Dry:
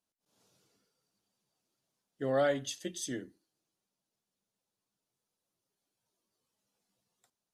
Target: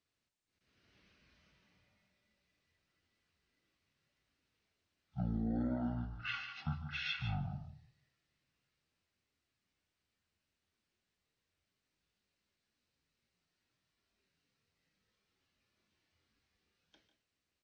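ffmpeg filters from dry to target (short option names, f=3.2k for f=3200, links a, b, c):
-filter_complex "[0:a]aecho=1:1:63|74:0.266|0.141,acrossover=split=170[a][b];[b]acompressor=threshold=-37dB:ratio=4[c];[a][c]amix=inputs=2:normalize=0,asetrate=18846,aresample=44100,volume=1dB"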